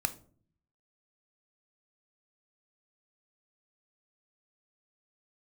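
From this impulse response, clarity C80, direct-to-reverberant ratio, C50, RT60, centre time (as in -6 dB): 21.5 dB, 9.5 dB, 16.5 dB, 0.50 s, 5 ms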